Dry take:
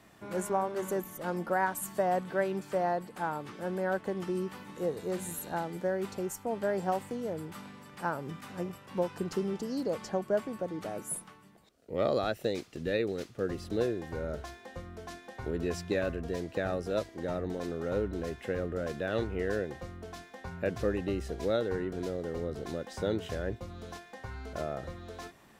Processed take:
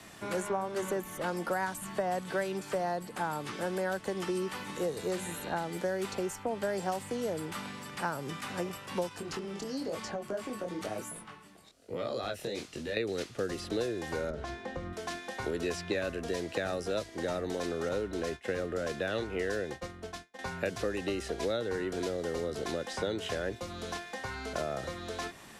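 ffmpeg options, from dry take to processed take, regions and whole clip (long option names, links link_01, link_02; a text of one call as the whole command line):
ffmpeg -i in.wav -filter_complex "[0:a]asettb=1/sr,asplit=3[link_01][link_02][link_03];[link_01]atrim=end=2.574[link_04];[link_02]atrim=start=2.57:end=3.3,asetpts=PTS-STARTPTS,afade=type=in:duration=0.004:curve=qsin,afade=type=out:start_time=0.726:duration=0.004:curve=qsin,lowpass=frequency=1800:poles=1,aemphasis=mode=production:type=50kf[link_05];[link_03]atrim=start=3.296[link_06];[link_04][link_05]acrossfade=duration=0.004:curve1=hsin:curve2=qsin[link_07];[link_07][link_06]acrossfade=duration=0.004:curve1=qsin:curve2=hsin,asettb=1/sr,asplit=3[link_08][link_09][link_10];[link_08]atrim=end=9.094[link_11];[link_09]atrim=start=9.09:end=12.97,asetpts=PTS-STARTPTS,afade=type=in:duration=0.004:curve=qsin,afade=type=out:start_time=3.876:duration=0.004:curve=qsin,acompressor=threshold=-34dB:ratio=4:attack=3.2:release=140:knee=1:detection=peak,flanger=delay=17:depth=7.5:speed=1[link_12];[link_10]atrim=start=12.966[link_13];[link_11][link_12]acrossfade=duration=0.004:curve1=hsin:curve2=qsin[link_14];[link_14][link_13]acrossfade=duration=0.004:curve1=qsin:curve2=hsin,asettb=1/sr,asplit=3[link_15][link_16][link_17];[link_15]atrim=end=14.304[link_18];[link_16]atrim=start=14.3:end=14.93,asetpts=PTS-STARTPTS,afade=type=in:duration=0.004:curve=qsin,afade=type=out:start_time=0.626:duration=0.004:curve=qsin,acompressor=threshold=-40dB:ratio=4:attack=3.2:release=140:knee=1:detection=peak,aemphasis=mode=reproduction:type=riaa[link_19];[link_17]atrim=start=14.926[link_20];[link_18][link_19]acrossfade=duration=0.004:curve1=hsin:curve2=qsin[link_21];[link_21][link_20]acrossfade=duration=0.004:curve1=qsin:curve2=hsin,asettb=1/sr,asplit=3[link_22][link_23][link_24];[link_22]atrim=end=17.894[link_25];[link_23]atrim=start=17.89:end=20.39,asetpts=PTS-STARTPTS,afade=type=in:duration=0.004:curve=qsin,afade=type=out:start_time=2.496:duration=0.004:curve=qsin,highshelf=frequency=4700:gain=-4,agate=range=-33dB:threshold=-40dB:ratio=3:release=100:detection=peak[link_26];[link_24]atrim=start=20.386[link_27];[link_25][link_26]acrossfade=duration=0.004:curve1=hsin:curve2=qsin[link_28];[link_28][link_27]acrossfade=duration=0.004:curve1=qsin:curve2=hsin,lowpass=frequency=12000:width=0.5412,lowpass=frequency=12000:width=1.3066,highshelf=frequency=2100:gain=8,acrossover=split=130|280|3700[link_29][link_30][link_31][link_32];[link_29]acompressor=threshold=-55dB:ratio=4[link_33];[link_30]acompressor=threshold=-52dB:ratio=4[link_34];[link_31]acompressor=threshold=-37dB:ratio=4[link_35];[link_32]acompressor=threshold=-53dB:ratio=4[link_36];[link_33][link_34][link_35][link_36]amix=inputs=4:normalize=0,volume=5.5dB" out.wav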